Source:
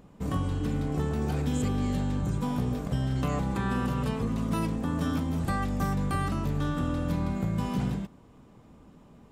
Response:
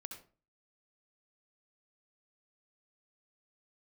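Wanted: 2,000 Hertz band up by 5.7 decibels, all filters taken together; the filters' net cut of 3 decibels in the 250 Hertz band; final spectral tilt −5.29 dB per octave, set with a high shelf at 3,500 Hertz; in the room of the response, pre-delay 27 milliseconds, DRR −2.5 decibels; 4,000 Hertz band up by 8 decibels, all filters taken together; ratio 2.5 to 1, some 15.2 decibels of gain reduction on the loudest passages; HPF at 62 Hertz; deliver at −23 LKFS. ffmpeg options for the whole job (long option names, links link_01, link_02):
-filter_complex "[0:a]highpass=62,equalizer=frequency=250:width_type=o:gain=-4,equalizer=frequency=2000:width_type=o:gain=5,highshelf=frequency=3500:gain=5.5,equalizer=frequency=4000:width_type=o:gain=5,acompressor=threshold=-50dB:ratio=2.5,asplit=2[link_01][link_02];[1:a]atrim=start_sample=2205,adelay=27[link_03];[link_02][link_03]afir=irnorm=-1:irlink=0,volume=6.5dB[link_04];[link_01][link_04]amix=inputs=2:normalize=0,volume=17.5dB"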